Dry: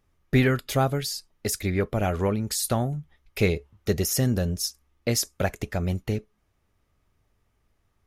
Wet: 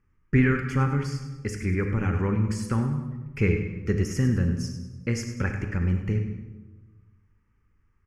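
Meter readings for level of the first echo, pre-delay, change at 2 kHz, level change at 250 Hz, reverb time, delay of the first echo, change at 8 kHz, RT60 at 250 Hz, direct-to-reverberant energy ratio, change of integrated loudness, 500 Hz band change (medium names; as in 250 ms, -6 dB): -12.0 dB, 32 ms, +0.5 dB, +1.5 dB, 1.2 s, 100 ms, -12.0 dB, 1.5 s, 5.0 dB, -0.5 dB, -4.5 dB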